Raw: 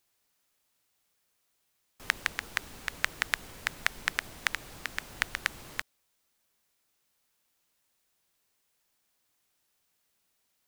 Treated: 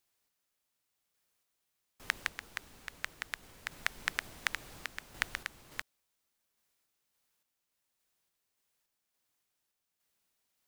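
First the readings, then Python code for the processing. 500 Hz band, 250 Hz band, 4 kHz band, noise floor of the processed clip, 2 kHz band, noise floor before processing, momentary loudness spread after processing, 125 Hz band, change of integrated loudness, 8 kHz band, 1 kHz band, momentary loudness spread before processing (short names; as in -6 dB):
-6.0 dB, -6.0 dB, -6.0 dB, -85 dBFS, -6.0 dB, -76 dBFS, 9 LU, -6.0 dB, -6.0 dB, -6.0 dB, -6.0 dB, 8 LU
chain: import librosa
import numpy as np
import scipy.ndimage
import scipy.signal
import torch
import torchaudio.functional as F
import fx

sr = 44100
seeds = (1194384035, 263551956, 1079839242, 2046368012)

y = fx.tremolo_random(x, sr, seeds[0], hz=3.5, depth_pct=55)
y = F.gain(torch.from_numpy(y), -3.5).numpy()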